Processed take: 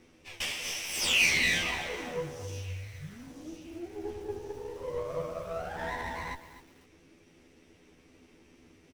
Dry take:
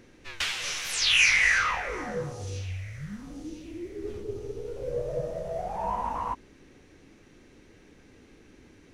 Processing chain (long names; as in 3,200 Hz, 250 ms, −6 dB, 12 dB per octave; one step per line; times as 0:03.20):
lower of the sound and its delayed copy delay 0.37 ms
low-shelf EQ 190 Hz −5 dB
in parallel at −9 dB: gain into a clipping stage and back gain 26 dB
on the sum: double-tracking delay 12 ms −2 dB
feedback echo at a low word length 251 ms, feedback 35%, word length 7 bits, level −13 dB
level −7 dB